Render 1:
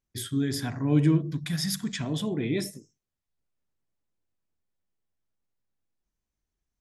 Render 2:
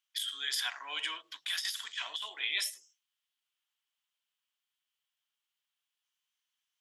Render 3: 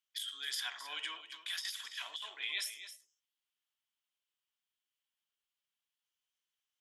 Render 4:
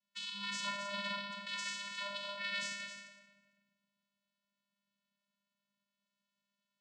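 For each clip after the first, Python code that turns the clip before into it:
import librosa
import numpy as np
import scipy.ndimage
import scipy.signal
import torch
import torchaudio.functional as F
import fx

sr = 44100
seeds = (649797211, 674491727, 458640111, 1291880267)

y1 = scipy.signal.sosfilt(scipy.signal.butter(4, 1000.0, 'highpass', fs=sr, output='sos'), x)
y1 = fx.peak_eq(y1, sr, hz=3100.0, db=14.0, octaves=0.47)
y1 = fx.over_compress(y1, sr, threshold_db=-33.0, ratio=-0.5)
y2 = y1 + 10.0 ** (-12.0 / 20.0) * np.pad(y1, (int(266 * sr / 1000.0), 0))[:len(y1)]
y2 = y2 * 10.0 ** (-5.0 / 20.0)
y3 = 10.0 ** (-33.0 / 20.0) * np.tanh(y2 / 10.0 ** (-33.0 / 20.0))
y3 = fx.room_shoebox(y3, sr, seeds[0], volume_m3=1500.0, walls='mixed', distance_m=2.6)
y3 = fx.vocoder(y3, sr, bands=8, carrier='square', carrier_hz=201.0)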